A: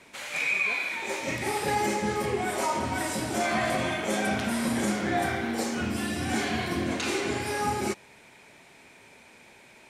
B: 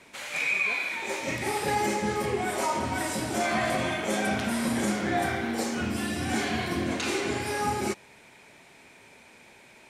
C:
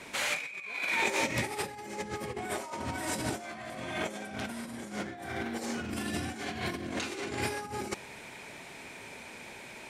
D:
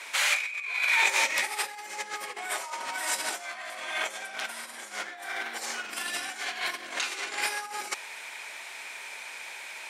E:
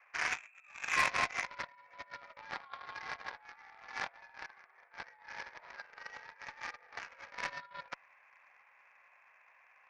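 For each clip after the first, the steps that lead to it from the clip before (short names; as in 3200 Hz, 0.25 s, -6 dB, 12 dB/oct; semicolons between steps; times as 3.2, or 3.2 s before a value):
nothing audible
negative-ratio compressor -34 dBFS, ratio -0.5
HPF 1000 Hz 12 dB/oct; gain +7 dB
mistuned SSB +150 Hz 300–2000 Hz; added harmonics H 7 -18 dB, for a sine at -15 dBFS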